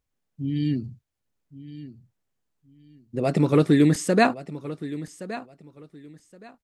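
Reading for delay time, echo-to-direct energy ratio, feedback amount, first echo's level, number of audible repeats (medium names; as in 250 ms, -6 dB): 1120 ms, -15.0 dB, 22%, -15.0 dB, 2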